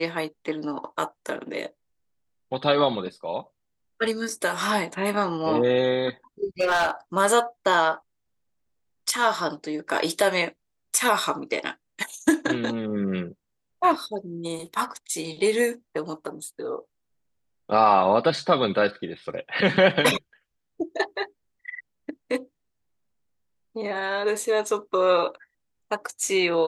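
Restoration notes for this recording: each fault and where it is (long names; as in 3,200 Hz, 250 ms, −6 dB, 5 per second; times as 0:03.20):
0:06.61–0:06.90: clipping −17.5 dBFS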